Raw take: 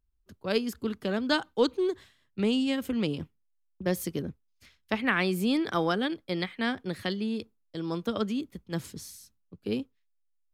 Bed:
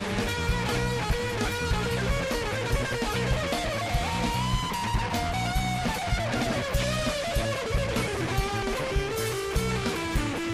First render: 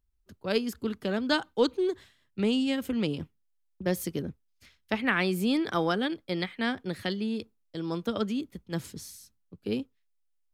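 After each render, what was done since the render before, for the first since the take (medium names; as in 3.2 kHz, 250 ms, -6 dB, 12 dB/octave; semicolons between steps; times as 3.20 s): band-stop 1.1 kHz, Q 25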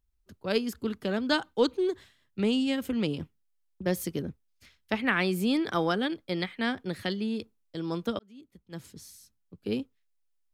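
8.19–9.69 s: fade in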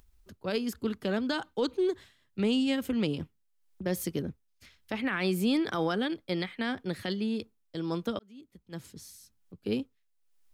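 peak limiter -19 dBFS, peak gain reduction 9.5 dB; upward compressor, threshold -50 dBFS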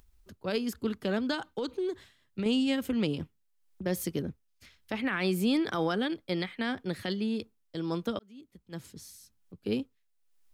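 1.34–2.46 s: compression, threshold -28 dBFS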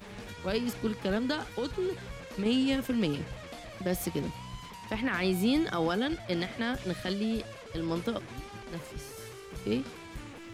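add bed -16 dB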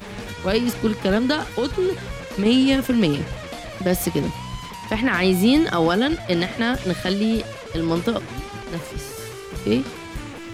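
trim +10.5 dB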